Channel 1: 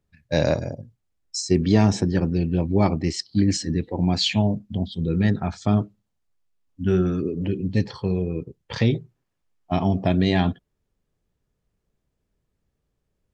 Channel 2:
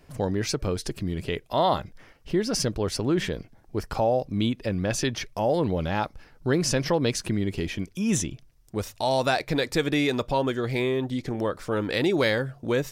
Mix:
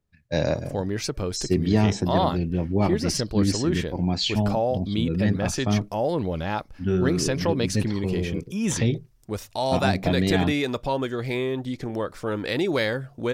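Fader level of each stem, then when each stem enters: -3.0 dB, -1.0 dB; 0.00 s, 0.55 s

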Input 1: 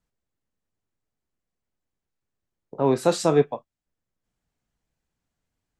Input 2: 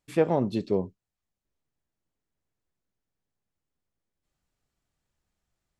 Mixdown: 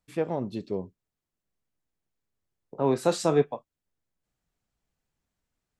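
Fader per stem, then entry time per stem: -3.5 dB, -5.5 dB; 0.00 s, 0.00 s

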